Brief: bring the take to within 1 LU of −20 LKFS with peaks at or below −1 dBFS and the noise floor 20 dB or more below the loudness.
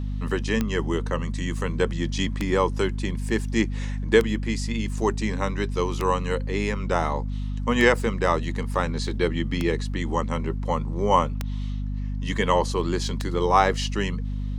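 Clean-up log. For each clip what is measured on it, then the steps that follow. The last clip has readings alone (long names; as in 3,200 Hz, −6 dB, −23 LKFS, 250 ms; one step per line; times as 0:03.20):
number of clicks 8; mains hum 50 Hz; hum harmonics up to 250 Hz; level of the hum −26 dBFS; integrated loudness −25.0 LKFS; sample peak −3.5 dBFS; target loudness −20.0 LKFS
→ click removal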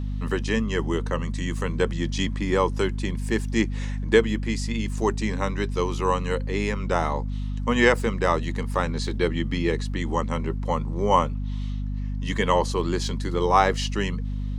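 number of clicks 0; mains hum 50 Hz; hum harmonics up to 250 Hz; level of the hum −26 dBFS
→ hum removal 50 Hz, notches 5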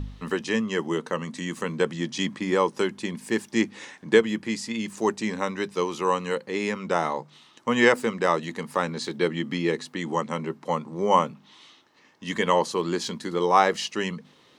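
mains hum none found; integrated loudness −26.0 LKFS; sample peak −4.5 dBFS; target loudness −20.0 LKFS
→ level +6 dB
brickwall limiter −1 dBFS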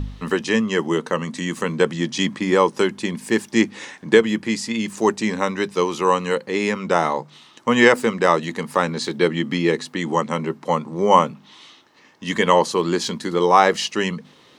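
integrated loudness −20.5 LKFS; sample peak −1.0 dBFS; background noise floor −52 dBFS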